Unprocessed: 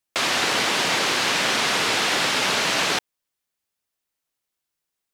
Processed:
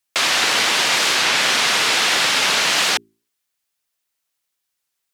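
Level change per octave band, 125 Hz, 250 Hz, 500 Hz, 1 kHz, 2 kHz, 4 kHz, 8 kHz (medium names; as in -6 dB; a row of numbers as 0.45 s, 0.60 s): -2.5 dB, -2.0 dB, 0.0 dB, +2.5 dB, +4.5 dB, +5.5 dB, +6.0 dB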